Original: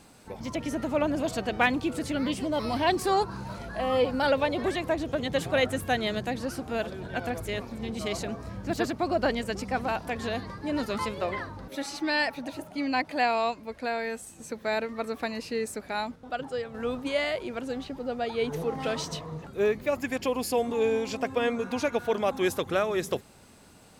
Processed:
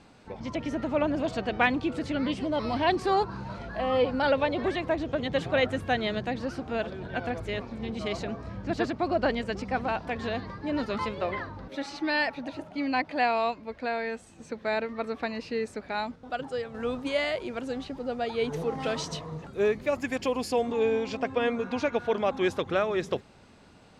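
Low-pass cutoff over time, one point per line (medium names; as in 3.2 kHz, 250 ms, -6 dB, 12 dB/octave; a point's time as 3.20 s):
15.88 s 4.3 kHz
16.35 s 8.6 kHz
20.24 s 8.6 kHz
20.90 s 4.5 kHz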